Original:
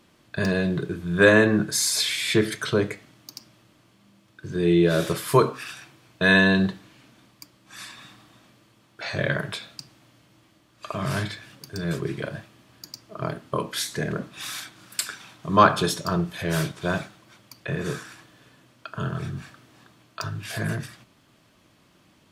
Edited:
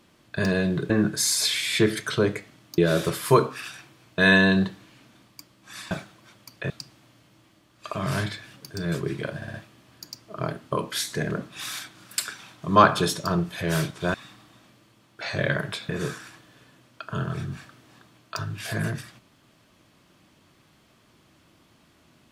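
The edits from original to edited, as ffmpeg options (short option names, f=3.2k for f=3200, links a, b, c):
-filter_complex "[0:a]asplit=10[a][b][c][d][e][f][g][h][i][j];[a]atrim=end=0.902[k];[b]atrim=start=1.448:end=3.332[l];[c]atrim=start=4.808:end=7.942[m];[d]atrim=start=16.948:end=17.742[n];[e]atrim=start=9.688:end=12.412[o];[f]atrim=start=12.348:end=12.412[p];[g]atrim=start=12.348:end=12.412[q];[h]atrim=start=12.348:end=16.952[r];[i]atrim=start=7.938:end=9.692[s];[j]atrim=start=17.738[t];[k][l]acrossfade=d=0.004:c1=hsin:c2=hsin[u];[u][m]acrossfade=d=0.004:c1=hsin:c2=hsin[v];[v][n]acrossfade=d=0.004:c1=hsin:c2=hsin[w];[w][o]acrossfade=d=0.004:c1=hsin:c2=hsin[x];[x][p]acrossfade=d=0.004:c1=hsin:c2=hsin[y];[y][q]acrossfade=d=0.004:c1=hsin:c2=hsin[z];[z][r]acrossfade=d=0.004:c1=hsin:c2=hsin[aa];[aa][s]acrossfade=d=0.004:c1=hsin:c2=hsin[ab];[ab][t]acrossfade=d=0.004:c1=hsin:c2=hsin"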